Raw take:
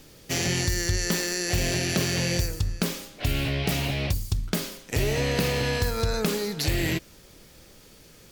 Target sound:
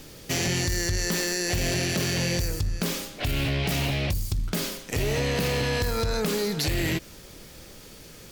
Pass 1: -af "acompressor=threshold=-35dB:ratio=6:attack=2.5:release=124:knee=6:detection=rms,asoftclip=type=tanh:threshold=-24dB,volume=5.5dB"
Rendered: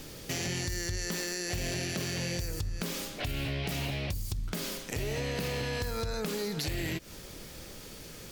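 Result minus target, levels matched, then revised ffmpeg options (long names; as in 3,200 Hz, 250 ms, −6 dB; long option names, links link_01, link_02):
downward compressor: peak gain reduction +9.5 dB
-af "acompressor=threshold=-23.5dB:ratio=6:attack=2.5:release=124:knee=6:detection=rms,asoftclip=type=tanh:threshold=-24dB,volume=5.5dB"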